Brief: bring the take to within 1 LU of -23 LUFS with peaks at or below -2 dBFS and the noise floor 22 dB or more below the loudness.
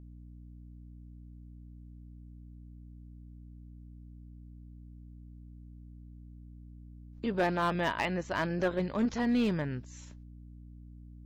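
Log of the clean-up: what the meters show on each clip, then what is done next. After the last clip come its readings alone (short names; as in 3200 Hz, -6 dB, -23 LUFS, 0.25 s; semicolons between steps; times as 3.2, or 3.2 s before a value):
clipped 0.4%; flat tops at -22.0 dBFS; hum 60 Hz; harmonics up to 300 Hz; hum level -47 dBFS; loudness -31.5 LUFS; peak -22.0 dBFS; loudness target -23.0 LUFS
-> clip repair -22 dBFS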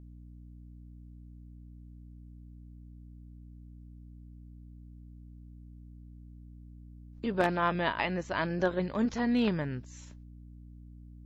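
clipped 0.0%; hum 60 Hz; harmonics up to 300 Hz; hum level -47 dBFS
-> notches 60/120/180/240/300 Hz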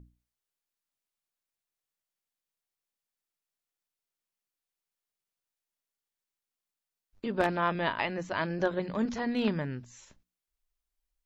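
hum none; loudness -31.0 LUFS; peak -12.5 dBFS; loudness target -23.0 LUFS
-> gain +8 dB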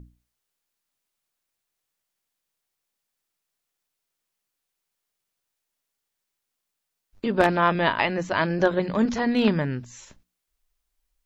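loudness -23.0 LUFS; peak -4.5 dBFS; noise floor -82 dBFS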